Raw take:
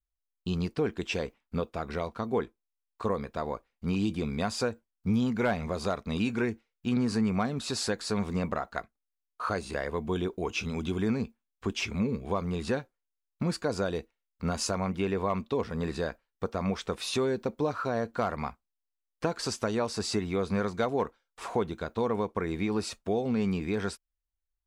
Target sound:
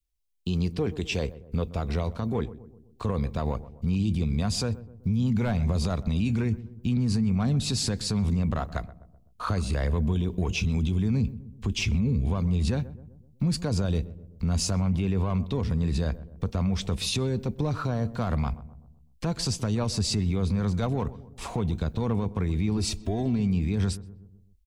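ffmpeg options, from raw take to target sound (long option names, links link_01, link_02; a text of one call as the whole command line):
ffmpeg -i in.wav -filter_complex "[0:a]acrossover=split=120|460|1800[link_01][link_02][link_03][link_04];[link_03]adynamicsmooth=sensitivity=1.5:basefreq=850[link_05];[link_01][link_02][link_05][link_04]amix=inputs=4:normalize=0,asubboost=boost=6:cutoff=150,alimiter=level_in=0.5dB:limit=-24dB:level=0:latency=1:release=37,volume=-0.5dB,asettb=1/sr,asplit=3[link_06][link_07][link_08];[link_06]atrim=end=22.774[link_09];[link_07]atrim=start=22.77:end=23.4,asetpts=PTS-STARTPTS,afade=type=in:duration=0.004:curve=qsin,afade=type=out:start_time=0.626:duration=0.004:curve=qsin,aecho=1:1:3:0.69,atrim=end_sample=27783[link_10];[link_08]atrim=start=23.396[link_11];[link_09][link_10]acrossfade=duration=0.004:curve1=hsin:curve2=qsin[link_12];[link_12][link_11]acrossfade=duration=0.004:curve1=qsin:curve2=hsin,asplit=2[link_13][link_14];[link_14]adelay=127,lowpass=frequency=880:poles=1,volume=-15dB,asplit=2[link_15][link_16];[link_16]adelay=127,lowpass=frequency=880:poles=1,volume=0.55,asplit=2[link_17][link_18];[link_18]adelay=127,lowpass=frequency=880:poles=1,volume=0.55,asplit=2[link_19][link_20];[link_20]adelay=127,lowpass=frequency=880:poles=1,volume=0.55,asplit=2[link_21][link_22];[link_22]adelay=127,lowpass=frequency=880:poles=1,volume=0.55[link_23];[link_13][link_15][link_17][link_19][link_21][link_23]amix=inputs=6:normalize=0,volume=6dB" out.wav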